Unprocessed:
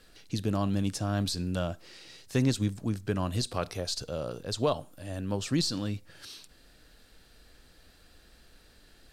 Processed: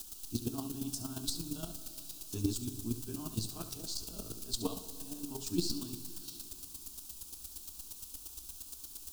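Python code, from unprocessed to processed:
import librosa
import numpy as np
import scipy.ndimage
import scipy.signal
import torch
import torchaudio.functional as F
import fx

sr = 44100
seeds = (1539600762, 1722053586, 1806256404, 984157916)

p1 = fx.frame_reverse(x, sr, frame_ms=35.0)
p2 = fx.quant_dither(p1, sr, seeds[0], bits=8, dither='triangular')
p3 = fx.high_shelf(p2, sr, hz=12000.0, db=-4.5)
p4 = fx.fixed_phaser(p3, sr, hz=530.0, stages=6)
p5 = fx.chopper(p4, sr, hz=8.6, depth_pct=65, duty_pct=15)
p6 = fx.peak_eq(p5, sr, hz=980.0, db=-15.0, octaves=3.0)
p7 = p6 + fx.echo_single(p6, sr, ms=70, db=-12.5, dry=0)
p8 = fx.rev_plate(p7, sr, seeds[1], rt60_s=3.0, hf_ratio=0.95, predelay_ms=0, drr_db=11.0)
y = p8 * librosa.db_to_amplitude(10.0)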